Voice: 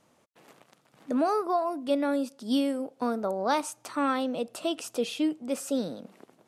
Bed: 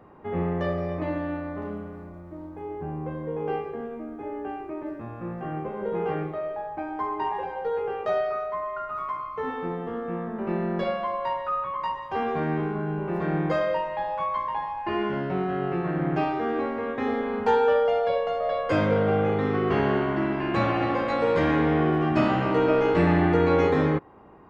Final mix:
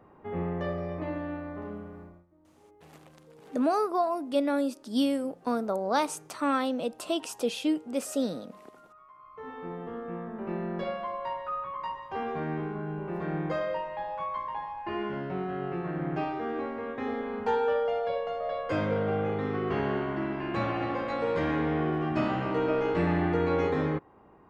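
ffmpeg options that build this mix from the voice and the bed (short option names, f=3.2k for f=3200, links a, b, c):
-filter_complex "[0:a]adelay=2450,volume=0dB[a];[1:a]volume=12.5dB,afade=t=out:st=2.02:d=0.24:silence=0.11885,afade=t=in:st=9.14:d=0.69:silence=0.133352[b];[a][b]amix=inputs=2:normalize=0"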